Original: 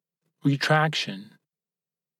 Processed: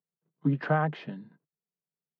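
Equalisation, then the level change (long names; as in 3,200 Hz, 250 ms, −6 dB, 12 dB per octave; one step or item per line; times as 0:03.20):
low-pass filter 1,200 Hz 12 dB per octave
notch filter 530 Hz, Q 16
−3.5 dB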